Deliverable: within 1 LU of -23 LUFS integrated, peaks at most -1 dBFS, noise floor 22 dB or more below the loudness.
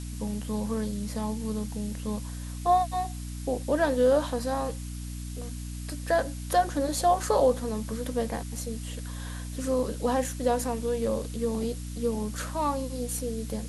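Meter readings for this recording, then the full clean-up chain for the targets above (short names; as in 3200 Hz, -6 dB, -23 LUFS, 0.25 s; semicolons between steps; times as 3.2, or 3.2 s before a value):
hum 60 Hz; harmonics up to 300 Hz; hum level -34 dBFS; noise floor -37 dBFS; noise floor target -52 dBFS; loudness -29.5 LUFS; peak -12.5 dBFS; loudness target -23.0 LUFS
-> notches 60/120/180/240/300 Hz; noise print and reduce 15 dB; gain +6.5 dB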